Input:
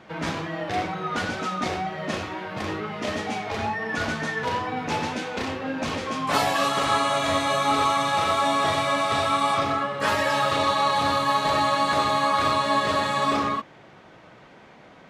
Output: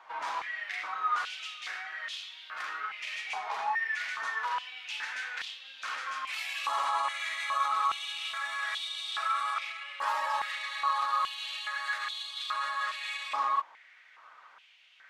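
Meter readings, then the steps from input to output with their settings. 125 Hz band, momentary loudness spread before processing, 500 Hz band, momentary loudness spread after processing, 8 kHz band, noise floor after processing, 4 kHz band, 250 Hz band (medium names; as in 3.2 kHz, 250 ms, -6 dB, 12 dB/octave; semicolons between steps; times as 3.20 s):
under -40 dB, 8 LU, -23.5 dB, 8 LU, -11.5 dB, -57 dBFS, -7.0 dB, under -35 dB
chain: peak limiter -18.5 dBFS, peak gain reduction 9.5 dB; step-sequenced high-pass 2.4 Hz 970–3400 Hz; trim -8.5 dB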